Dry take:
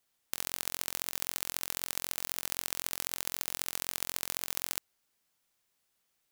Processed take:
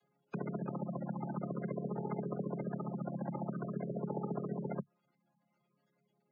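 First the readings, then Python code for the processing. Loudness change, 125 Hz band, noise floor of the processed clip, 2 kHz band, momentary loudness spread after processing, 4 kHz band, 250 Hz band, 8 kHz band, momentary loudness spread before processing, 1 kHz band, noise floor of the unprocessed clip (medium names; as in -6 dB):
-5.5 dB, +16.0 dB, -80 dBFS, -15.5 dB, 2 LU, under -40 dB, +16.0 dB, under -40 dB, 1 LU, +1.0 dB, -78 dBFS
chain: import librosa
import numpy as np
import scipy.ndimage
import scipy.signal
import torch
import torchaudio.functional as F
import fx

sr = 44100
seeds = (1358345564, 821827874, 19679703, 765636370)

y = fx.chord_vocoder(x, sr, chord='major triad', root=49)
y = fx.spec_gate(y, sr, threshold_db=-10, keep='strong')
y = y * 10.0 ** (5.5 / 20.0)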